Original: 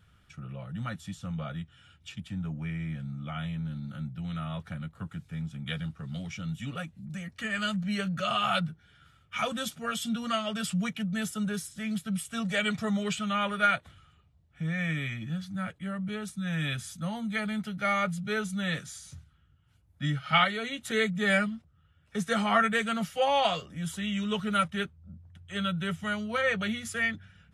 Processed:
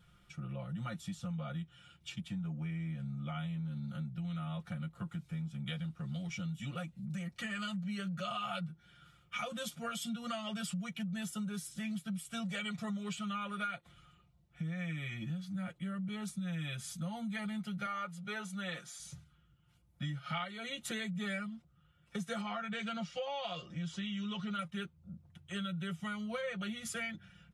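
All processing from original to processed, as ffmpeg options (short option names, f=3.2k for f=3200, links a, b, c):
-filter_complex "[0:a]asettb=1/sr,asplit=3[a][b][c];[a]atrim=end=17.864[d];[b]atrim=start=17.86:end=19,asetpts=PTS-STARTPTS,afade=t=in:d=0.004:c=qsin,afade=t=out:st=1.136:d=0.004:c=qsin,bandpass=f=970:t=q:w=0.56,aemphasis=mode=production:type=50fm[e];[c]atrim=start=18.996[f];[d][e]acrossfade=d=0.004:c1=hsin:c2=qsin[g];[g][f]acrossfade=d=0.004:c1=qsin:c2=hsin,asettb=1/sr,asplit=3[h][i][j];[h]atrim=end=22.414[k];[i]atrim=start=22.41:end=24.59,asetpts=PTS-STARTPTS,afade=t=in:d=0.004:c=qsin,afade=t=out:st=2.176:d=0.004:c=qsin,aemphasis=mode=production:type=cd,acompressor=threshold=-28dB:ratio=2:attack=3.2:release=140:knee=1:detection=peak,lowpass=f=5.4k:w=0.5412,lowpass=f=5.4k:w=1.3066[l];[j]atrim=start=24.586[m];[k][l]acrossfade=d=0.004:c1=hsin:c2=qsin[n];[n][m]acrossfade=d=0.004:c1=qsin:c2=hsin,equalizer=f=1.7k:t=o:w=0.23:g=-6,aecho=1:1:5.7:0.68,acompressor=threshold=-34dB:ratio=6,volume=-2.5dB"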